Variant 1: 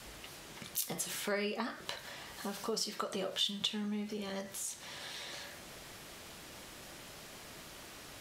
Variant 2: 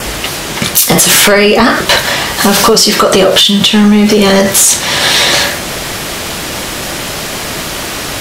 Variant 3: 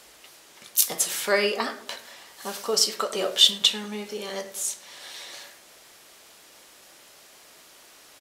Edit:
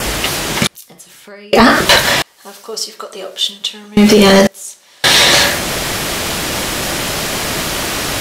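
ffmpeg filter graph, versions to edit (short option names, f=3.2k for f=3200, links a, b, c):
-filter_complex "[2:a]asplit=2[a][b];[1:a]asplit=4[c][d][e][f];[c]atrim=end=0.672[g];[0:a]atrim=start=0.668:end=1.532[h];[d]atrim=start=1.528:end=2.222[i];[a]atrim=start=2.218:end=3.972[j];[e]atrim=start=3.968:end=4.472[k];[b]atrim=start=4.468:end=5.042[l];[f]atrim=start=5.038[m];[g][h]acrossfade=d=0.004:c1=hsin:c2=hsin[n];[n][i]acrossfade=d=0.004:c1=hsin:c2=hsin[o];[o][j]acrossfade=d=0.004:c1=hsin:c2=hsin[p];[p][k]acrossfade=d=0.004:c1=hsin:c2=hsin[q];[q][l]acrossfade=d=0.004:c1=hsin:c2=hsin[r];[r][m]acrossfade=d=0.004:c1=hsin:c2=hsin"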